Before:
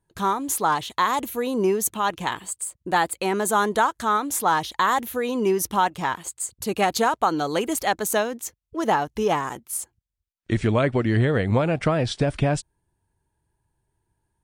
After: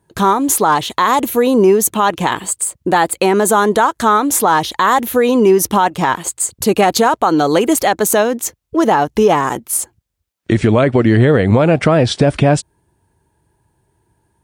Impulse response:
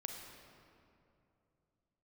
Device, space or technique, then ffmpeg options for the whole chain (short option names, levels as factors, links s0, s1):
mastering chain: -af "highpass=56,equalizer=f=390:t=o:w=2.6:g=4,acompressor=threshold=0.0562:ratio=1.5,alimiter=level_in=4.73:limit=0.891:release=50:level=0:latency=1,volume=0.841"